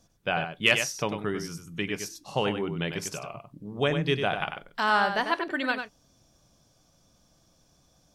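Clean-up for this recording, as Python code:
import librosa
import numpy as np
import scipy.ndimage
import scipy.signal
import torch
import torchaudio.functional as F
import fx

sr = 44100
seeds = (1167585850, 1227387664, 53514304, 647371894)

y = fx.fix_declip(x, sr, threshold_db=-8.0)
y = fx.fix_echo_inverse(y, sr, delay_ms=97, level_db=-7.5)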